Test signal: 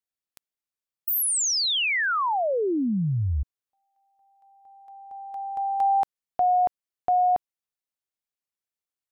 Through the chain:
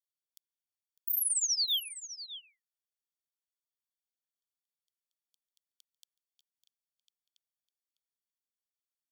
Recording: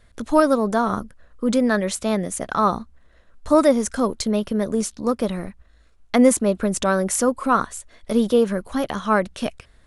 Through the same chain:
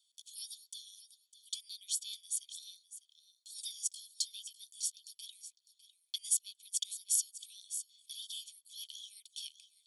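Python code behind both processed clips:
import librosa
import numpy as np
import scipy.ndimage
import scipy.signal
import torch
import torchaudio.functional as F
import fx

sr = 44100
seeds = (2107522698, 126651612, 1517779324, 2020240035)

y = scipy.signal.sosfilt(scipy.signal.butter(12, 3000.0, 'highpass', fs=sr, output='sos'), x)
y = y + 0.8 * np.pad(y, (int(0.9 * sr / 1000.0), 0))[:len(y)]
y = y + 10.0 ** (-14.0 / 20.0) * np.pad(y, (int(603 * sr / 1000.0), 0))[:len(y)]
y = F.gain(torch.from_numpy(y), -8.0).numpy()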